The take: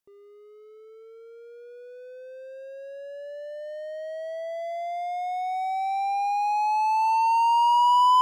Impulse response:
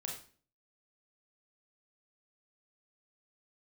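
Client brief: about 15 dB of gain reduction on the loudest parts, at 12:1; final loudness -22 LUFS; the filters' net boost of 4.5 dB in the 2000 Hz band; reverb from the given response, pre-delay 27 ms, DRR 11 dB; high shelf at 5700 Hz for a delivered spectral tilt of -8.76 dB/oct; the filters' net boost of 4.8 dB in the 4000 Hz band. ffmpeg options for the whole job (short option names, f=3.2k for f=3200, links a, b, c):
-filter_complex "[0:a]equalizer=f=2k:t=o:g=3.5,equalizer=f=4k:t=o:g=8.5,highshelf=f=5.7k:g=-7.5,acompressor=threshold=-31dB:ratio=12,asplit=2[a][b];[1:a]atrim=start_sample=2205,adelay=27[c];[b][c]afir=irnorm=-1:irlink=0,volume=-10.5dB[d];[a][d]amix=inputs=2:normalize=0,volume=13dB"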